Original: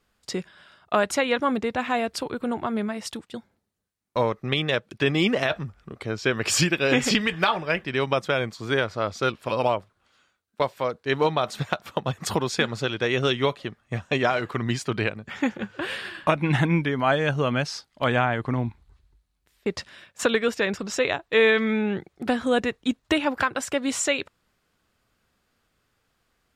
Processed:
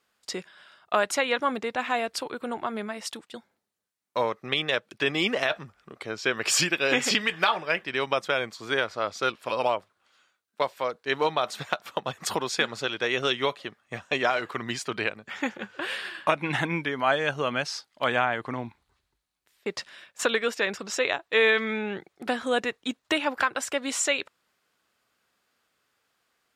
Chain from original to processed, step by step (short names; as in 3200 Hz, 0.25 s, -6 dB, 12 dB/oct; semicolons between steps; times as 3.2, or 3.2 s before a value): HPF 540 Hz 6 dB/oct